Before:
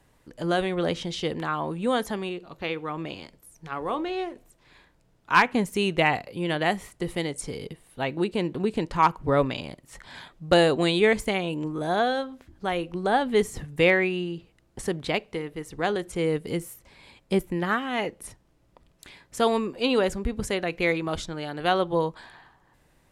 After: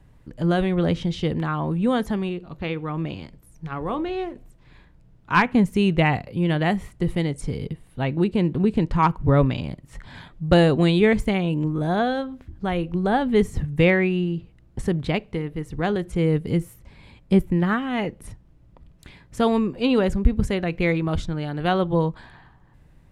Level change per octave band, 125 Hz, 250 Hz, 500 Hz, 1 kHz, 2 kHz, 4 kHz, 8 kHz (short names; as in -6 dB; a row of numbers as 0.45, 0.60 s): +10.5 dB, +7.0 dB, +1.5 dB, 0.0 dB, -0.5 dB, -2.0 dB, n/a